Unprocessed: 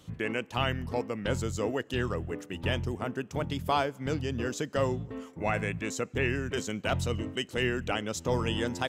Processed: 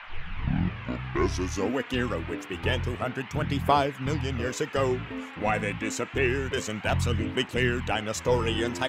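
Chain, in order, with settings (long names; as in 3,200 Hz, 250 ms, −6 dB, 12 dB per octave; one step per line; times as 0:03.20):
turntable start at the beginning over 1.75 s
noise in a band 740–2,800 Hz −47 dBFS
phase shifter 0.27 Hz, delay 4.2 ms, feedback 39%
level +2.5 dB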